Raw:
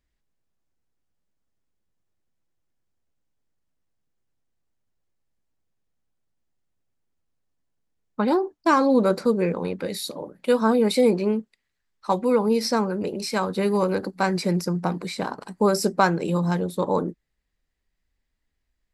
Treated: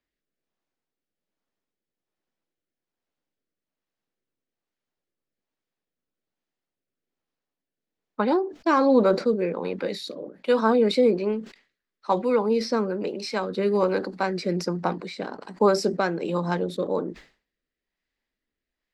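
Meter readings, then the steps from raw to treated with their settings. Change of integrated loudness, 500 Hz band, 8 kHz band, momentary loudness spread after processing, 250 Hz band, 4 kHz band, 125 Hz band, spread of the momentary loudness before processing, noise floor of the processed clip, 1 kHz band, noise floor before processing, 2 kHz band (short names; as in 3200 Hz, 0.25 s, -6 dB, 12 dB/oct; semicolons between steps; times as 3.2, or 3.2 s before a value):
-1.0 dB, 0.0 dB, n/a, 13 LU, -2.5 dB, -2.0 dB, -5.5 dB, 10 LU, under -85 dBFS, -2.0 dB, -78 dBFS, -2.0 dB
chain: three-band isolator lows -16 dB, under 210 Hz, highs -19 dB, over 5800 Hz; rotary speaker horn 1.2 Hz; sustainer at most 150 dB/s; gain +2 dB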